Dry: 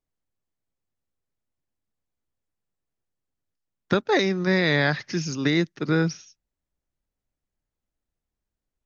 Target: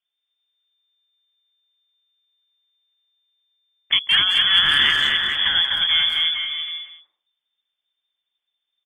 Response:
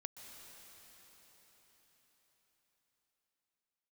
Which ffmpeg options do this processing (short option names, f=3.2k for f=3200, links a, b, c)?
-filter_complex "[0:a]bandreject=f=50:t=h:w=6,bandreject=f=100:t=h:w=6,bandreject=f=150:t=h:w=6,bandreject=f=200:t=h:w=6,bandreject=f=250:t=h:w=6,bandreject=f=300:t=h:w=6,bandreject=f=350:t=h:w=6,asplit=2[a][b];[b]aecho=0:1:250|437.5|578.1|683.6|762.7:0.631|0.398|0.251|0.158|0.1[c];[a][c]amix=inputs=2:normalize=0,lowpass=f=3.1k:t=q:w=0.5098,lowpass=f=3.1k:t=q:w=0.6013,lowpass=f=3.1k:t=q:w=0.9,lowpass=f=3.1k:t=q:w=2.563,afreqshift=-3600,asplit=2[d][e];[e]adelay=180,highpass=300,lowpass=3.4k,asoftclip=type=hard:threshold=-16.5dB,volume=-7dB[f];[d][f]amix=inputs=2:normalize=0,volume=3dB" -ar 48000 -c:a aac -b:a 64k